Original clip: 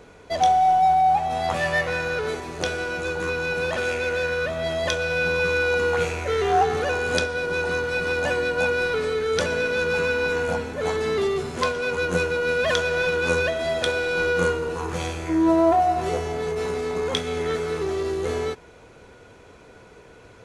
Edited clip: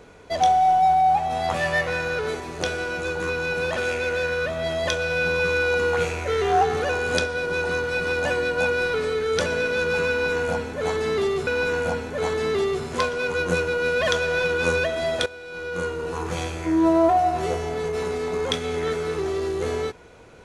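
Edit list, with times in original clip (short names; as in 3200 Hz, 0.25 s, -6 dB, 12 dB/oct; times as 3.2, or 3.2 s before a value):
10.1–11.47 loop, 2 plays
13.89–14.77 fade in quadratic, from -15.5 dB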